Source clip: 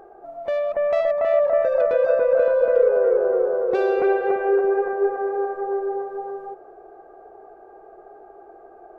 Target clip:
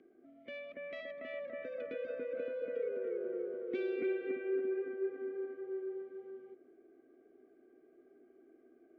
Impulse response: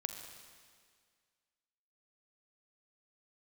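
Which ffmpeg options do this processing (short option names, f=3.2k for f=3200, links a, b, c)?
-filter_complex "[0:a]asplit=3[a][b][c];[a]bandpass=f=270:t=q:w=8,volume=0dB[d];[b]bandpass=f=2.29k:t=q:w=8,volume=-6dB[e];[c]bandpass=f=3.01k:t=q:w=8,volume=-9dB[f];[d][e][f]amix=inputs=3:normalize=0,afreqshift=-13,asplit=2[g][h];[1:a]atrim=start_sample=2205[i];[h][i]afir=irnorm=-1:irlink=0,volume=-17dB[j];[g][j]amix=inputs=2:normalize=0,volume=1dB"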